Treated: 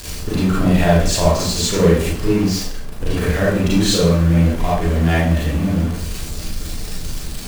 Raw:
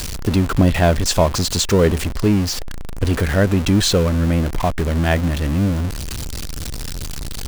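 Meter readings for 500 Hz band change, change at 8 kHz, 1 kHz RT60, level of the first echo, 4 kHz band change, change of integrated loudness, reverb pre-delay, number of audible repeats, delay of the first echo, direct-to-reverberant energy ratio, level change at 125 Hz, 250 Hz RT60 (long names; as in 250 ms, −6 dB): +1.0 dB, +0.5 dB, 0.55 s, no echo audible, 0.0 dB, +1.0 dB, 31 ms, no echo audible, no echo audible, −8.0 dB, +1.0 dB, 0.60 s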